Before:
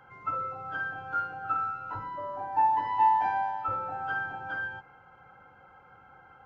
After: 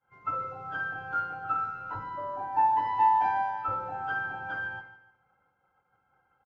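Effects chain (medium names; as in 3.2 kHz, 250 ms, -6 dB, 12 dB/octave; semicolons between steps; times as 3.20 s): expander -43 dBFS; on a send: feedback delay 148 ms, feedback 34%, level -14 dB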